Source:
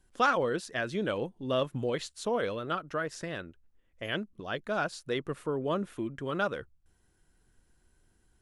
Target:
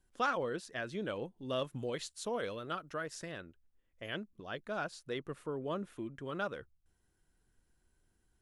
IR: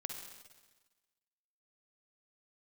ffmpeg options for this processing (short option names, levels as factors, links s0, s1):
-filter_complex "[0:a]asettb=1/sr,asplit=3[s0][s1][s2];[s0]atrim=end=1.384[s3];[s1]atrim=start=1.38:end=3.32,asetpts=PTS-STARTPTS,afade=t=in:d=0.004:c=qsin,afade=t=out:st=1.936:d=0.004:c=qsin,highshelf=f=4200:g=7[s4];[s2]atrim=start=3.316[s5];[s3][s4]acrossfade=d=0.004:c1=hsin:c2=qsin[s6];[s6][s5]acrossfade=d=0.004:c1=qsin:c2=hsin,volume=0.447"